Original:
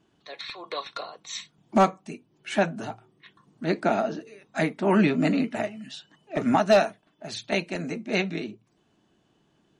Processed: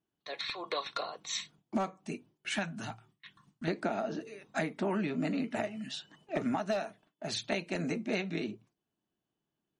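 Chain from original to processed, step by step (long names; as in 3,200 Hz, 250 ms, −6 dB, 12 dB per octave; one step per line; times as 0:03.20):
noise gate with hold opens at −48 dBFS
0:02.49–0:03.68: parametric band 460 Hz −14.5 dB 1.6 octaves
downward compressor 12 to 1, threshold −29 dBFS, peak gain reduction 15.5 dB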